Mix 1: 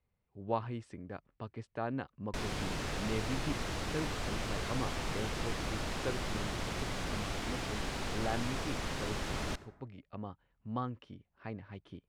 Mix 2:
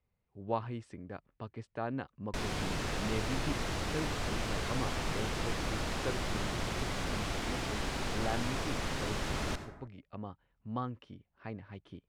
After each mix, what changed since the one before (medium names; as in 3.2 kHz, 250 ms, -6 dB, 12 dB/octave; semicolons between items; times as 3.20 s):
background: send +10.0 dB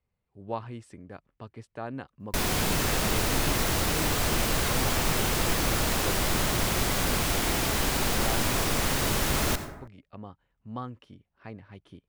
background +8.0 dB; master: remove distance through air 70 m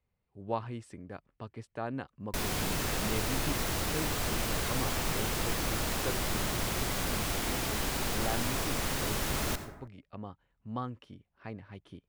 background -6.0 dB